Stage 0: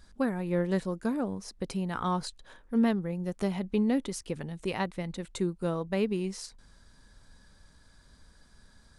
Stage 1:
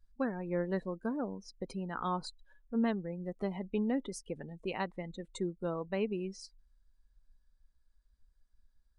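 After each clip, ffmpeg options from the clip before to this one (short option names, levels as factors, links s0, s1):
-af "afftdn=nr=24:nf=-42,equalizer=f=83:t=o:w=1.6:g=-11.5,volume=0.668"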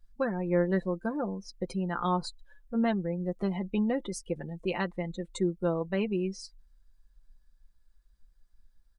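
-af "aecho=1:1:5.8:0.55,volume=1.58"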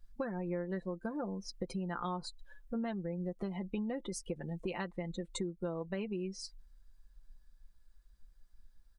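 -af "acompressor=threshold=0.0141:ratio=5,volume=1.19"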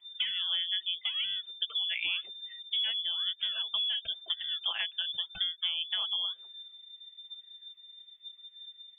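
-filter_complex "[0:a]acrossover=split=280[s0][s1];[s0]acrusher=samples=16:mix=1:aa=0.000001:lfo=1:lforange=16:lforate=0.96[s2];[s2][s1]amix=inputs=2:normalize=0,lowpass=f=3100:t=q:w=0.5098,lowpass=f=3100:t=q:w=0.6013,lowpass=f=3100:t=q:w=0.9,lowpass=f=3100:t=q:w=2.563,afreqshift=-3600,volume=1.78"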